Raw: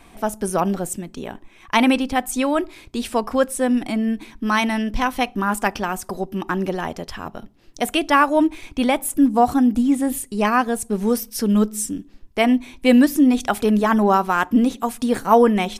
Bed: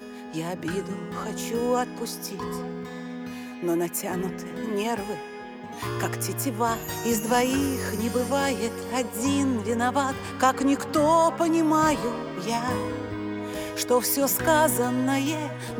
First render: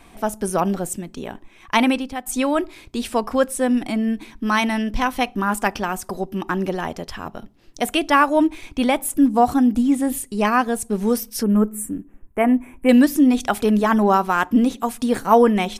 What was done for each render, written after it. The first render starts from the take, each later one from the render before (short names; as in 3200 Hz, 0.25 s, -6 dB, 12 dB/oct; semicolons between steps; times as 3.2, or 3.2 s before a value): 1.75–2.26 fade out, to -12 dB; 11.43–12.89 Butterworth band-stop 4500 Hz, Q 0.61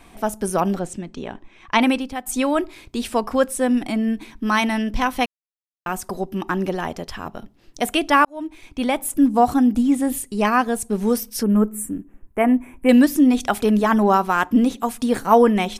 0.79–1.82 LPF 5700 Hz; 5.26–5.86 mute; 8.25–9.44 fade in equal-power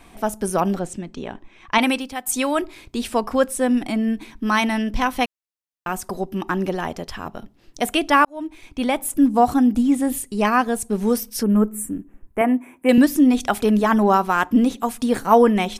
1.78–2.62 tilt +1.5 dB/oct; 12.41–12.98 HPF 230 Hz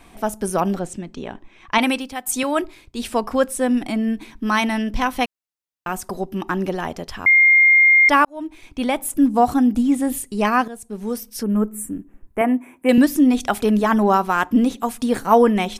2.43–3.03 three-band expander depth 70%; 7.26–8.09 bleep 2120 Hz -9 dBFS; 10.68–12.51 fade in equal-power, from -13.5 dB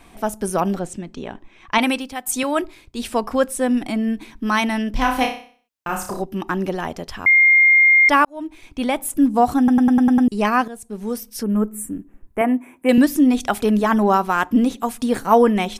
4.93–6.22 flutter echo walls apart 5.3 m, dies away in 0.45 s; 9.58 stutter in place 0.10 s, 7 plays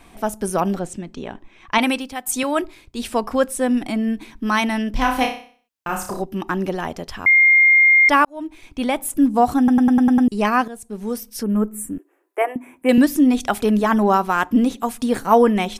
11.98–12.56 steep high-pass 330 Hz 72 dB/oct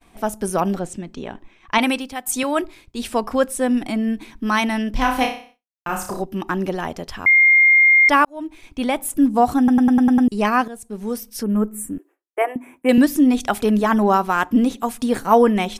expander -42 dBFS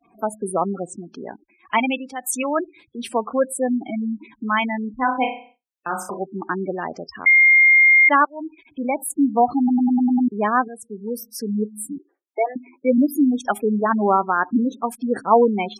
spectral gate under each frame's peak -15 dB strong; Bessel high-pass 250 Hz, order 2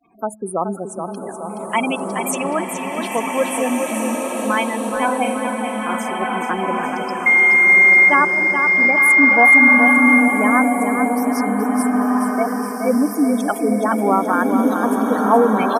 feedback echo 0.424 s, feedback 54%, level -7 dB; bloom reverb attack 1.74 s, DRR 0.5 dB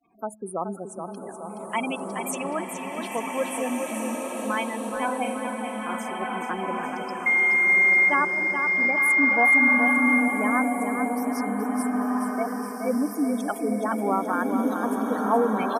gain -8 dB